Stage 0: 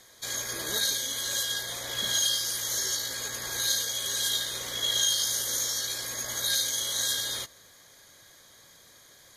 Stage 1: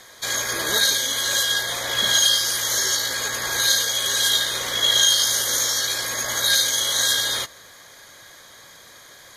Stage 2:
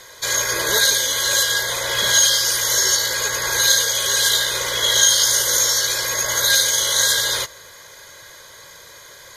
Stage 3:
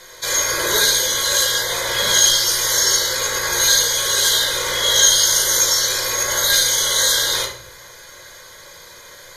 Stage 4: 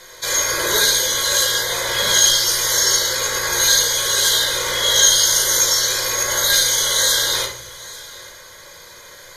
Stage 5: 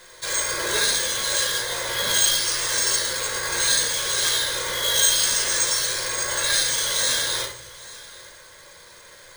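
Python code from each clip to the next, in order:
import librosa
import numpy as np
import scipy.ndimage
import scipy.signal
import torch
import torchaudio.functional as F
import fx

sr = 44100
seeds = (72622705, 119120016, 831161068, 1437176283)

y1 = fx.peak_eq(x, sr, hz=1300.0, db=6.5, octaves=2.9)
y1 = y1 * 10.0 ** (6.0 / 20.0)
y2 = y1 + 0.54 * np.pad(y1, (int(2.0 * sr / 1000.0), 0))[:len(y1)]
y2 = y2 * 10.0 ** (2.5 / 20.0)
y3 = fx.room_shoebox(y2, sr, seeds[0], volume_m3=80.0, walls='mixed', distance_m=0.79)
y3 = y3 * 10.0 ** (-1.5 / 20.0)
y4 = y3 + 10.0 ** (-20.0 / 20.0) * np.pad(y3, (int(842 * sr / 1000.0), 0))[:len(y3)]
y5 = np.repeat(y4[::3], 3)[:len(y4)]
y5 = y5 * 10.0 ** (-5.5 / 20.0)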